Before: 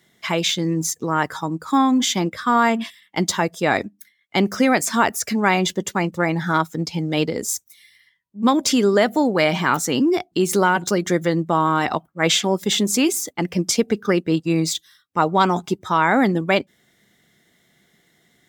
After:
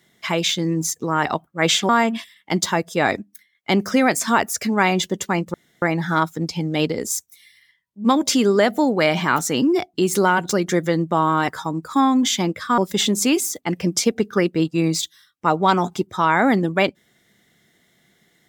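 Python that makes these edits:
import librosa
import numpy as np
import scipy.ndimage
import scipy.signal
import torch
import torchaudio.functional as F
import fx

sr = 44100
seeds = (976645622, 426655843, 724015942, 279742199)

y = fx.edit(x, sr, fx.swap(start_s=1.25, length_s=1.3, other_s=11.86, other_length_s=0.64),
    fx.insert_room_tone(at_s=6.2, length_s=0.28), tone=tone)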